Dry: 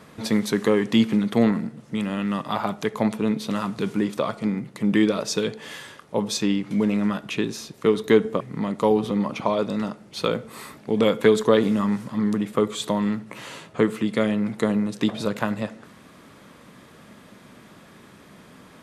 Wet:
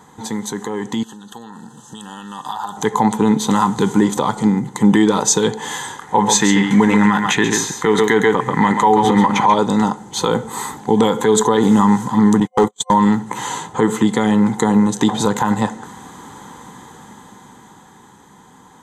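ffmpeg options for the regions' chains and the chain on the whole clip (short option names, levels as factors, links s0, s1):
-filter_complex "[0:a]asettb=1/sr,asplit=3[s0][s1][s2];[s0]atrim=end=1.034[s3];[s1]atrim=start=1.03:end=2.77,asetpts=PTS-STARTPTS,afade=t=in:d=0.004:c=qsin,afade=t=out:st=1.736:d=0.004:c=qsin,tiltshelf=f=1100:g=-7.5,acompressor=threshold=0.0141:ratio=6:attack=3.2:release=140:knee=1:detection=peak,asuperstop=centerf=2200:order=20:qfactor=3.1[s4];[s2]atrim=start=2.766[s5];[s3][s4]acrossfade=d=0.004:c1=hsin:c2=qsin[s6];[s6][s5]acrossfade=d=0.004:c1=qsin:c2=hsin,asettb=1/sr,asplit=3[s7][s8][s9];[s7]atrim=end=4.124[s10];[s8]atrim=start=4.12:end=4.69,asetpts=PTS-STARTPTS,afade=t=in:d=0.004:c=qsin,afade=t=out:st=0.566:d=0.004:c=qsin,equalizer=f=1200:w=0.38:g=-3.5,acompressor=mode=upward:threshold=0.0316:ratio=2.5:attack=3.2:release=140:knee=2.83:detection=peak[s11];[s9]atrim=start=4.686[s12];[s10][s11]acrossfade=d=0.004:c1=hsin:c2=qsin[s13];[s13][s12]acrossfade=d=0.004:c1=qsin:c2=hsin,asettb=1/sr,asplit=3[s14][s15][s16];[s14]atrim=end=6.014[s17];[s15]atrim=start=6.01:end=9.54,asetpts=PTS-STARTPTS,afade=t=in:d=0.004:c=qsin,afade=t=out:st=3.526:d=0.004:c=qsin,equalizer=f=1900:t=o:w=1:g=12.5,aecho=1:1:136:0.398,atrim=end_sample=155673[s18];[s16]atrim=start=9.536[s19];[s17][s18]acrossfade=d=0.004:c1=hsin:c2=qsin[s20];[s20][s19]acrossfade=d=0.004:c1=qsin:c2=hsin,asettb=1/sr,asplit=3[s21][s22][s23];[s21]atrim=end=12.404[s24];[s22]atrim=start=12.4:end=12.94,asetpts=PTS-STARTPTS,afade=t=in:d=0.004:c=qsin,afade=t=out:st=0.536:d=0.004:c=qsin,highpass=f=74:p=1,agate=range=0.00224:threshold=0.0398:ratio=16:release=100:detection=peak,asoftclip=type=hard:threshold=0.133[s25];[s23]atrim=start=12.936[s26];[s24][s25]acrossfade=d=0.004:c1=hsin:c2=qsin[s27];[s27][s26]acrossfade=d=0.004:c1=qsin:c2=hsin,superequalizer=8b=0.398:9b=3.55:12b=0.355:14b=0.631:15b=2.82,alimiter=limit=0.2:level=0:latency=1:release=80,dynaudnorm=f=130:g=31:m=3.76"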